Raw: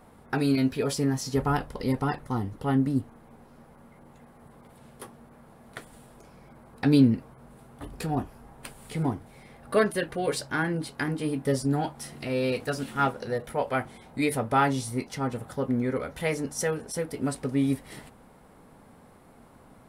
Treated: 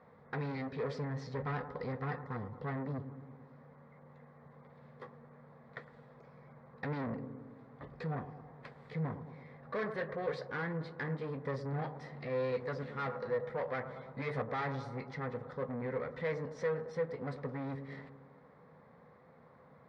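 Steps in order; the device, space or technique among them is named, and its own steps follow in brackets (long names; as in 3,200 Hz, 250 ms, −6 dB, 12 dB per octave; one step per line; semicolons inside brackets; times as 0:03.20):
analogue delay pedal into a guitar amplifier (bucket-brigade delay 109 ms, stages 1,024, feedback 63%, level −15 dB; tube saturation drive 28 dB, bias 0.4; loudspeaker in its box 88–4,100 Hz, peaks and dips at 150 Hz +8 dB, 310 Hz −7 dB, 500 Hz +10 dB, 1,100 Hz +6 dB, 1,900 Hz +9 dB, 2,900 Hz −10 dB)
0:13.89–0:14.42: double-tracking delay 15 ms −2.5 dB
level −8 dB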